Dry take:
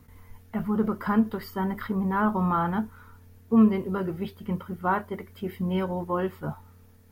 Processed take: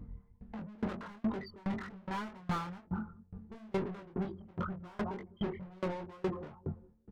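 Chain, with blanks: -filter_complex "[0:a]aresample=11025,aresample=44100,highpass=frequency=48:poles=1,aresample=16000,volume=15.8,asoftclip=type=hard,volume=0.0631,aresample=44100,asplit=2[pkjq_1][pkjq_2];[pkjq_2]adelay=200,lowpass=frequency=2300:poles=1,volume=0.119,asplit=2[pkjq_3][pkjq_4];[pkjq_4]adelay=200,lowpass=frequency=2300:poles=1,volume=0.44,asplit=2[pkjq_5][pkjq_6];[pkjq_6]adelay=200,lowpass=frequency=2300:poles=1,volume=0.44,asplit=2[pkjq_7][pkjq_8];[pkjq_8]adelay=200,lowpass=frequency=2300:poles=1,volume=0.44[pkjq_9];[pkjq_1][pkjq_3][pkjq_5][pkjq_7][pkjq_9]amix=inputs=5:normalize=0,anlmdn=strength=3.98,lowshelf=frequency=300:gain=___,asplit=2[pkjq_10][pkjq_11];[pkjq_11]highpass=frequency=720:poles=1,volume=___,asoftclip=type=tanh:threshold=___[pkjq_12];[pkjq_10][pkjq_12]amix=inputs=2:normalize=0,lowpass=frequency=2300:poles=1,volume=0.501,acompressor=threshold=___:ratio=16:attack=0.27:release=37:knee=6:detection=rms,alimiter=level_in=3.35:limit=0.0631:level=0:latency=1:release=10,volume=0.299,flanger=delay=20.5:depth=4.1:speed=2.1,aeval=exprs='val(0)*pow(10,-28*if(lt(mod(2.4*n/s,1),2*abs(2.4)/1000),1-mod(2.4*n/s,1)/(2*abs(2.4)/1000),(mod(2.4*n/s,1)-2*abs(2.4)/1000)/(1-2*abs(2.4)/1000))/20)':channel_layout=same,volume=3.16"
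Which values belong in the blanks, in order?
12, 44.7, 0.237, 0.0282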